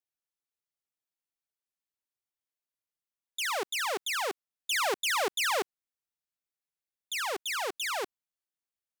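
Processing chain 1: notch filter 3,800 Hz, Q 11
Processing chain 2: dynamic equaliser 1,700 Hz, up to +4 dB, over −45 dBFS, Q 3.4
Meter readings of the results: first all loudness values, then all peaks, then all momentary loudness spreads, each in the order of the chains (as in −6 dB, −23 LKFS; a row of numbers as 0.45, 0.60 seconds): −31.0, −30.0 LKFS; −22.5, −21.5 dBFS; 9, 9 LU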